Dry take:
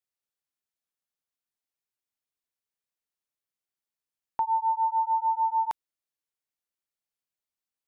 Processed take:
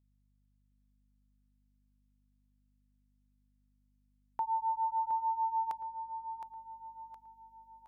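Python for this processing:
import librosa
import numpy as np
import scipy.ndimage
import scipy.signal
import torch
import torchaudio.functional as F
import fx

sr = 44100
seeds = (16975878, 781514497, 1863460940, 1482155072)

p1 = fx.add_hum(x, sr, base_hz=50, snr_db=32)
p2 = p1 + fx.echo_feedback(p1, sr, ms=716, feedback_pct=43, wet_db=-8.5, dry=0)
y = p2 * librosa.db_to_amplitude(-7.0)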